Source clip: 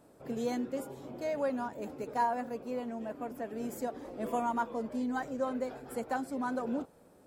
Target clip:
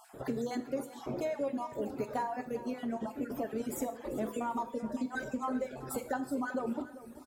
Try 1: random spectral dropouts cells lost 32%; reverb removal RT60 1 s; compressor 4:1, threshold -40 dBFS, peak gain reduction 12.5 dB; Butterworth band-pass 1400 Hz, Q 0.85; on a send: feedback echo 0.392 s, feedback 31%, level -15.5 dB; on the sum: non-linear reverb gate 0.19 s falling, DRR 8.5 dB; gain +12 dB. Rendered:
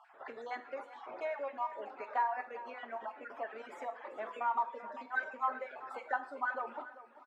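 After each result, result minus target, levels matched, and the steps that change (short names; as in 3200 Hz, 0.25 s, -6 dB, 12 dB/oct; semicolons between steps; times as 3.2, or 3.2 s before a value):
1000 Hz band +5.5 dB; compressor: peak gain reduction -5 dB
remove: Butterworth band-pass 1400 Hz, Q 0.85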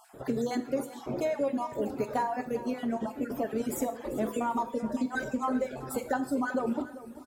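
compressor: peak gain reduction -5 dB
change: compressor 4:1, threshold -46.5 dBFS, peak gain reduction 17.5 dB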